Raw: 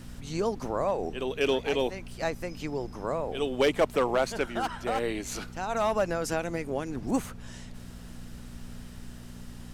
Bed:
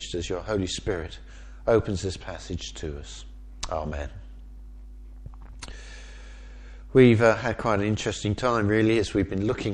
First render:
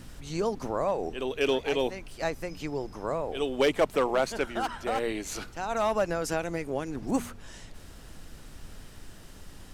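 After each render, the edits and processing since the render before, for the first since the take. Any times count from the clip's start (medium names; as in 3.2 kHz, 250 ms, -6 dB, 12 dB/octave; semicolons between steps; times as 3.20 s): de-hum 60 Hz, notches 4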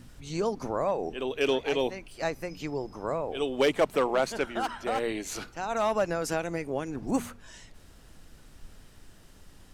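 noise print and reduce 6 dB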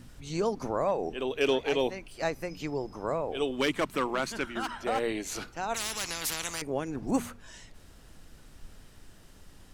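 3.51–4.71 s: high-order bell 590 Hz -8 dB 1.2 oct; 5.74–6.62 s: spectrum-flattening compressor 10:1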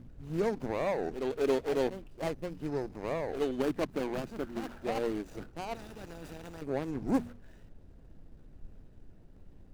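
median filter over 41 samples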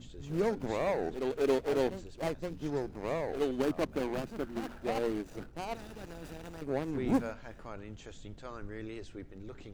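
add bed -21.5 dB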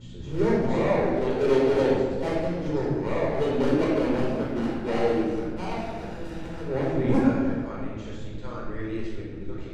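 distance through air 52 m; simulated room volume 1500 m³, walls mixed, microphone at 4.6 m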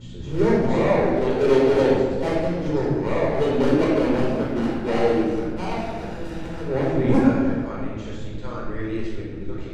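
trim +4 dB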